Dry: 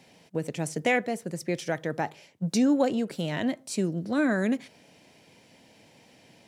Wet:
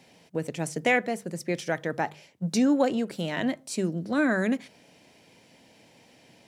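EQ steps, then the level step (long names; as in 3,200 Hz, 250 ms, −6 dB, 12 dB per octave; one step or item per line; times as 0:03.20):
mains-hum notches 50/100/150/200 Hz
dynamic equaliser 1,500 Hz, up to +3 dB, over −37 dBFS, Q 0.73
0.0 dB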